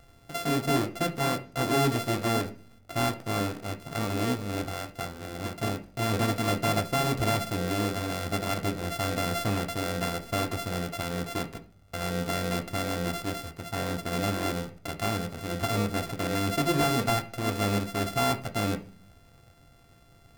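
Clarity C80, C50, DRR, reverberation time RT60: 20.0 dB, 15.0 dB, 4.5 dB, 0.50 s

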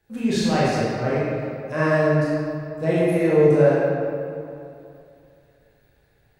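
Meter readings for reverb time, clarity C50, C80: 2.6 s, −4.5 dB, −2.0 dB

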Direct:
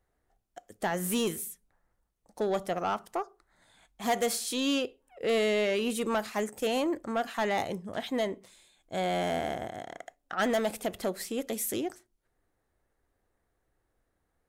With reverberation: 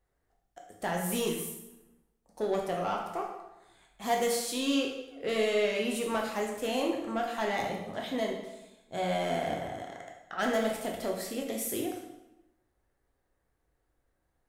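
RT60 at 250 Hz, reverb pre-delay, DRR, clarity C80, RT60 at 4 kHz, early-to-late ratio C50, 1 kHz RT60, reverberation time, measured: 1.1 s, 8 ms, −0.5 dB, 6.5 dB, 0.80 s, 4.0 dB, 0.95 s, 0.95 s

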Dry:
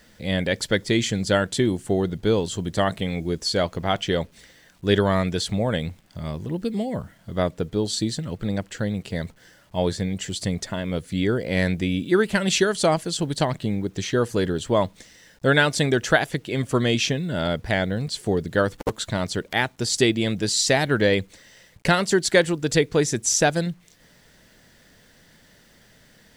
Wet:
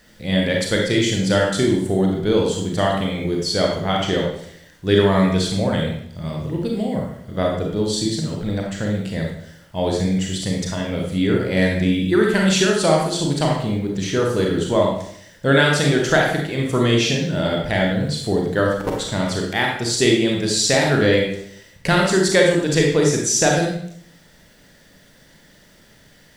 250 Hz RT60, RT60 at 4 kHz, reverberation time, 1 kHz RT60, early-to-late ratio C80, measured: 0.75 s, 0.60 s, 0.65 s, 0.65 s, 6.0 dB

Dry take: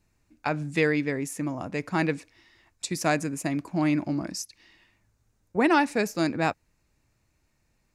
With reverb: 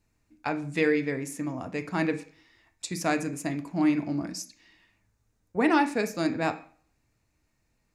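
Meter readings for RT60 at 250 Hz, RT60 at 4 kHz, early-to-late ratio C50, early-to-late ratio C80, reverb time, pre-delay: 0.50 s, 0.45 s, 14.0 dB, 19.0 dB, 0.45 s, 4 ms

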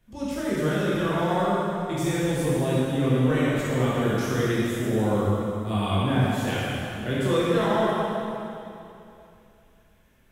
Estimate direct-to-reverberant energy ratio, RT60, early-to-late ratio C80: −9.0 dB, 2.8 s, −2.5 dB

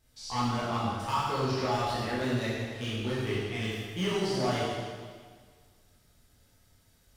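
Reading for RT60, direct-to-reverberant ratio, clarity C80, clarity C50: 1.7 s, −8.5 dB, 0.5 dB, −2.0 dB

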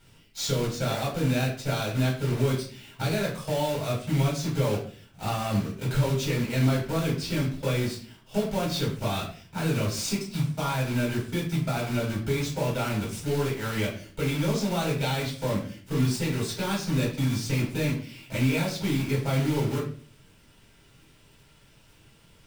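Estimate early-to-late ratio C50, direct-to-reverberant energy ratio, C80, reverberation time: 7.0 dB, −5.0 dB, 11.5 dB, 0.45 s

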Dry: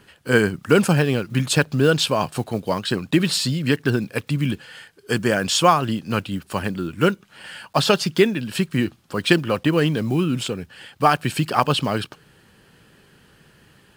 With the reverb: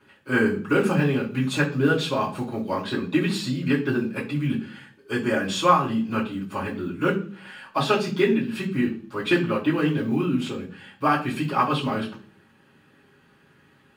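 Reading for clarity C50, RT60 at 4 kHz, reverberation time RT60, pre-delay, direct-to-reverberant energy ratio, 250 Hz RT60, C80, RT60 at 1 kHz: 11.0 dB, 0.45 s, 0.45 s, 3 ms, −8.5 dB, 0.70 s, 15.0 dB, 0.35 s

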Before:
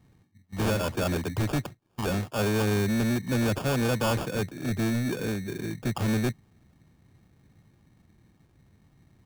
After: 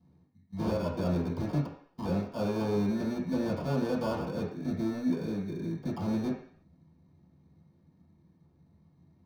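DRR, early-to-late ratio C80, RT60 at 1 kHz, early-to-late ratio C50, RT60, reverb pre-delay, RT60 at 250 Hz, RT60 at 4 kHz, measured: −10.5 dB, 9.0 dB, 0.55 s, 5.5 dB, 0.55 s, 3 ms, 0.50 s, 0.60 s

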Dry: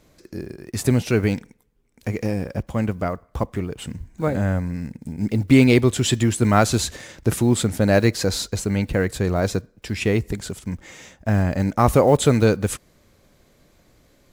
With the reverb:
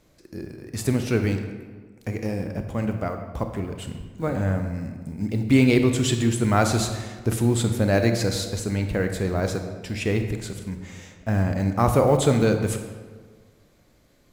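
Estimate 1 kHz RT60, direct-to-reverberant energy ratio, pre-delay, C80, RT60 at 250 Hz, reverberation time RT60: 1.5 s, 6.0 dB, 26 ms, 8.5 dB, 1.7 s, 1.5 s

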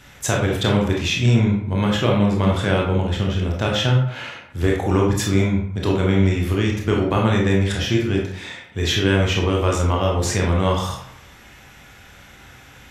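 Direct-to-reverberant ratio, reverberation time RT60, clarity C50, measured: −1.5 dB, 0.70 s, 3.5 dB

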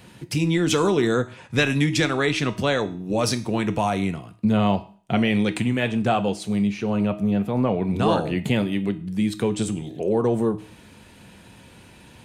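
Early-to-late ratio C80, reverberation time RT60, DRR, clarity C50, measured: 20.5 dB, 0.45 s, 9.5 dB, 16.5 dB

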